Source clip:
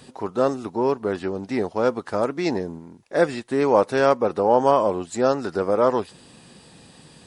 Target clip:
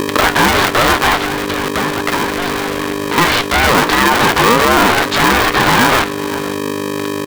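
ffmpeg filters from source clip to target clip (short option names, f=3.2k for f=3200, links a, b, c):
-filter_complex "[0:a]aeval=exprs='val(0)+0.5*0.112*sgn(val(0))':c=same,acrusher=bits=3:mix=0:aa=0.000001,highpass=240,equalizer=f=670:t=q:w=4:g=6,equalizer=f=970:t=q:w=4:g=-6,equalizer=f=2.4k:t=q:w=4:g=-8,lowpass=f=3.7k:w=0.5412,lowpass=f=3.7k:w=1.3066,aecho=1:1:506:0.0794,asettb=1/sr,asplit=3[a][b][c];[a]atrim=end=1.174[d];[b]atrim=start=1.17:end=3.18,asetpts=PTS-STARTPTS,afade=t=in:d=0.004:c=qsin,afade=t=out:st=2.006:d=0.004:c=qsin,acompressor=threshold=-33dB:ratio=2.5[e];[c]atrim=start=3.176[f];[d][e]acrossfade=d=0.004:c1=hsin:c2=qsin[g];[g][f]acrossfade=d=0.004:c1=qsin:c2=hsin,lowshelf=f=640:t=q:w=1.5:g=-13.5,aeval=exprs='val(0)+0.0158*(sin(2*PI*50*n/s)+sin(2*PI*2*50*n/s)/2+sin(2*PI*3*50*n/s)/3+sin(2*PI*4*50*n/s)/4+sin(2*PI*5*50*n/s)/5)':c=same,acompressor=mode=upward:threshold=-31dB:ratio=2.5,flanger=delay=10:depth=7.5:regen=70:speed=1.2:shape=triangular,alimiter=level_in=22dB:limit=-1dB:release=50:level=0:latency=1,aeval=exprs='val(0)*sgn(sin(2*PI*350*n/s))':c=same,volume=-1dB"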